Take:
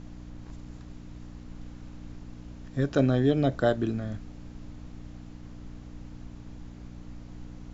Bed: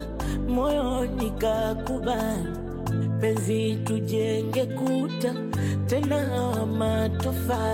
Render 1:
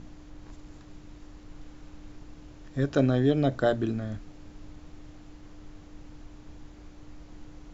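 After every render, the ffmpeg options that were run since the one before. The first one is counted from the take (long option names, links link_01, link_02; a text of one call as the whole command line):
ffmpeg -i in.wav -af "bandreject=frequency=60:width_type=h:width=4,bandreject=frequency=120:width_type=h:width=4,bandreject=frequency=180:width_type=h:width=4,bandreject=frequency=240:width_type=h:width=4" out.wav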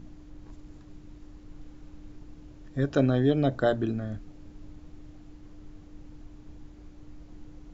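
ffmpeg -i in.wav -af "afftdn=noise_reduction=6:noise_floor=-50" out.wav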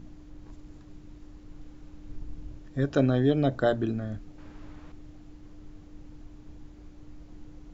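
ffmpeg -i in.wav -filter_complex "[0:a]asettb=1/sr,asplit=3[link_01][link_02][link_03];[link_01]atrim=end=2.094[link_04];[link_02]atrim=start=2.09:end=2.59,asetpts=PTS-STARTPTS,afade=type=in:duration=0.004:curve=qsin,afade=type=out:start_time=0.496:duration=0.004:curve=qsin,lowshelf=frequency=110:gain=10[link_05];[link_03]atrim=start=2.586[link_06];[link_04][link_05]acrossfade=duration=0.004:curve1=hsin:curve2=qsin[link_07];[link_07][link_06]acrossfade=duration=0.004:curve1=qsin:curve2=hsin,asettb=1/sr,asplit=3[link_08][link_09][link_10];[link_08]atrim=end=4.384[link_11];[link_09]atrim=start=4.38:end=4.92,asetpts=PTS-STARTPTS,afade=type=in:duration=0.004:curve=qsin,afade=type=out:start_time=0.536:duration=0.004:curve=qsin,equalizer=frequency=1400:width=0.49:gain=11[link_12];[link_10]atrim=start=4.916[link_13];[link_11][link_12]acrossfade=duration=0.004:curve1=hsin:curve2=qsin[link_14];[link_14][link_13]acrossfade=duration=0.004:curve1=qsin:curve2=hsin" out.wav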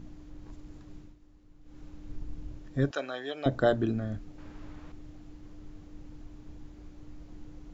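ffmpeg -i in.wav -filter_complex "[0:a]asettb=1/sr,asplit=3[link_01][link_02][link_03];[link_01]atrim=end=2.914[link_04];[link_02]atrim=start=2.91:end=3.46,asetpts=PTS-STARTPTS,afade=type=in:duration=0.004:curve=qsin,afade=type=out:start_time=0.546:duration=0.004:curve=qsin,highpass=850[link_05];[link_03]atrim=start=3.456[link_06];[link_04][link_05]acrossfade=duration=0.004:curve1=hsin:curve2=qsin[link_07];[link_07][link_06]acrossfade=duration=0.004:curve1=qsin:curve2=hsin,asplit=3[link_08][link_09][link_10];[link_08]atrim=end=1.16,asetpts=PTS-STARTPTS,afade=type=out:start_time=1:duration=0.16:silence=0.281838[link_11];[link_09]atrim=start=1.16:end=1.63,asetpts=PTS-STARTPTS,volume=-11dB[link_12];[link_10]atrim=start=1.63,asetpts=PTS-STARTPTS,afade=type=in:duration=0.16:silence=0.281838[link_13];[link_11][link_12][link_13]concat=n=3:v=0:a=1" out.wav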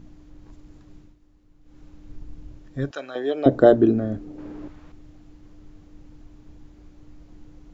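ffmpeg -i in.wav -filter_complex "[0:a]asettb=1/sr,asplit=3[link_01][link_02][link_03];[link_01]atrim=end=3.154[link_04];[link_02]atrim=start=3.15:end=4.68,asetpts=PTS-STARTPTS,afade=type=in:duration=0.004:curve=qsin,afade=type=out:start_time=1.526:duration=0.004:curve=qsin,equalizer=frequency=380:width_type=o:width=2.2:gain=14.5[link_05];[link_03]atrim=start=4.676[link_06];[link_04][link_05]acrossfade=duration=0.004:curve1=hsin:curve2=qsin[link_07];[link_07][link_06]acrossfade=duration=0.004:curve1=qsin:curve2=hsin" out.wav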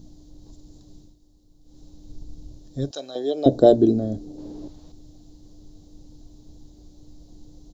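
ffmpeg -i in.wav -af "firequalizer=gain_entry='entry(700,0);entry(1300,-15);entry(2400,-14);entry(3900,9)':delay=0.05:min_phase=1" out.wav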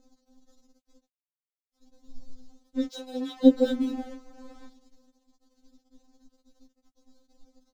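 ffmpeg -i in.wav -af "aeval=exprs='sgn(val(0))*max(abs(val(0))-0.00841,0)':channel_layout=same,afftfilt=real='re*3.46*eq(mod(b,12),0)':imag='im*3.46*eq(mod(b,12),0)':win_size=2048:overlap=0.75" out.wav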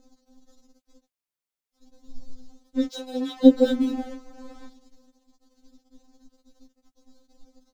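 ffmpeg -i in.wav -af "volume=4dB,alimiter=limit=-2dB:level=0:latency=1" out.wav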